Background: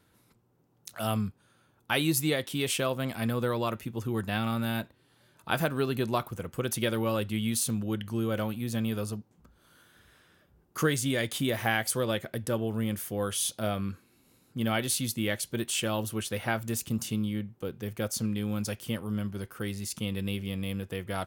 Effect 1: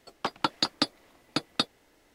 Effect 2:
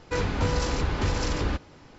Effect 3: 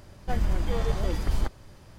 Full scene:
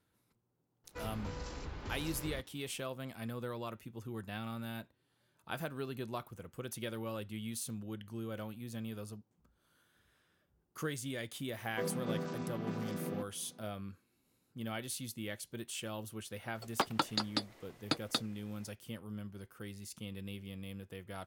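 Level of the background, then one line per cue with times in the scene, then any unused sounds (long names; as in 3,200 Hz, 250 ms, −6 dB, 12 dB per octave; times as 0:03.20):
background −12 dB
0:00.84: mix in 2 −17.5 dB
0:11.65: mix in 2 −9 dB + channel vocoder with a chord as carrier minor triad, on E3
0:16.55: mix in 1 −1 dB + brickwall limiter −15 dBFS
not used: 3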